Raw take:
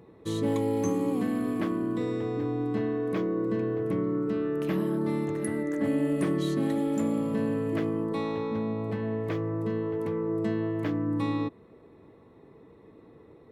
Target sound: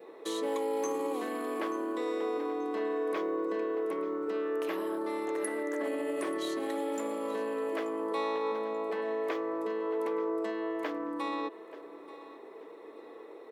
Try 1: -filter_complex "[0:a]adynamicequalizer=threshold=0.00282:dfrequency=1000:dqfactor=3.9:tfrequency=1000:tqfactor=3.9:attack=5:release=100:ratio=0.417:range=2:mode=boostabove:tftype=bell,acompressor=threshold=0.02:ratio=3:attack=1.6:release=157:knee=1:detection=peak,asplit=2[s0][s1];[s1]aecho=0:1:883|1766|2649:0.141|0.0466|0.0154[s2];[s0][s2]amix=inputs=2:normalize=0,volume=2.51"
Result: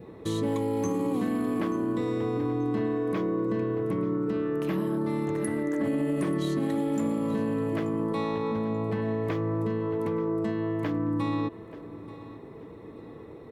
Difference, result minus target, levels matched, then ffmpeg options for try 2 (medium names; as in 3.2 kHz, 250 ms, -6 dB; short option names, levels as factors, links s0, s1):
500 Hz band -3.5 dB
-filter_complex "[0:a]adynamicequalizer=threshold=0.00282:dfrequency=1000:dqfactor=3.9:tfrequency=1000:tqfactor=3.9:attack=5:release=100:ratio=0.417:range=2:mode=boostabove:tftype=bell,acompressor=threshold=0.02:ratio=3:attack=1.6:release=157:knee=1:detection=peak,highpass=f=380:w=0.5412,highpass=f=380:w=1.3066,asplit=2[s0][s1];[s1]aecho=0:1:883|1766|2649:0.141|0.0466|0.0154[s2];[s0][s2]amix=inputs=2:normalize=0,volume=2.51"